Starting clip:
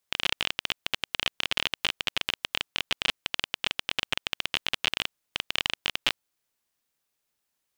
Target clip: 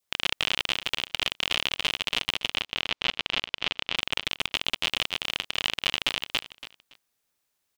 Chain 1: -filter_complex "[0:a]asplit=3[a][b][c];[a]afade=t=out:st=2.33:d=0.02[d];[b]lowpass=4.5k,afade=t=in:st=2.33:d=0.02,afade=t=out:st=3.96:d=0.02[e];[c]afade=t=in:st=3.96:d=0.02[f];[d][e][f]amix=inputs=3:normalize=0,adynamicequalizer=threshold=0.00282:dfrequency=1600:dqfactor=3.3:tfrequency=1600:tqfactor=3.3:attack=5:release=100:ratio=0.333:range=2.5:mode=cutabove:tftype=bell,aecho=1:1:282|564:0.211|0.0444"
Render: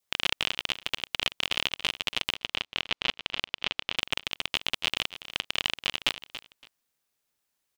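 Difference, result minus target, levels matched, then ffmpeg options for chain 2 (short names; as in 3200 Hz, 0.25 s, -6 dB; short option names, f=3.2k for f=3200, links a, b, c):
echo-to-direct -12 dB
-filter_complex "[0:a]asplit=3[a][b][c];[a]afade=t=out:st=2.33:d=0.02[d];[b]lowpass=4.5k,afade=t=in:st=2.33:d=0.02,afade=t=out:st=3.96:d=0.02[e];[c]afade=t=in:st=3.96:d=0.02[f];[d][e][f]amix=inputs=3:normalize=0,adynamicequalizer=threshold=0.00282:dfrequency=1600:dqfactor=3.3:tfrequency=1600:tqfactor=3.3:attack=5:release=100:ratio=0.333:range=2.5:mode=cutabove:tftype=bell,aecho=1:1:282|564|846:0.841|0.177|0.0371"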